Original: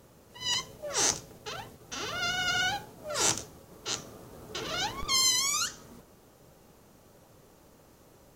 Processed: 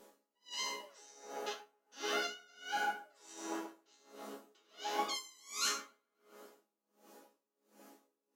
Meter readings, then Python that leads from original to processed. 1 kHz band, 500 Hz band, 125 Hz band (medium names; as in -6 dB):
-4.5 dB, -5.5 dB, under -25 dB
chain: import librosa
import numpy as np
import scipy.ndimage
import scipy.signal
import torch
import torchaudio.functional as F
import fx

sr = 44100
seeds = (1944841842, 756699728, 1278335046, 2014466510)

y = fx.brickwall_highpass(x, sr, low_hz=200.0)
y = fx.resonator_bank(y, sr, root=49, chord='minor', decay_s=0.42)
y = fx.echo_wet_lowpass(y, sr, ms=134, feedback_pct=60, hz=1300.0, wet_db=-4.0)
y = y * 10.0 ** (-35 * (0.5 - 0.5 * np.cos(2.0 * np.pi * 1.4 * np.arange(len(y)) / sr)) / 20.0)
y = F.gain(torch.from_numpy(y), 16.5).numpy()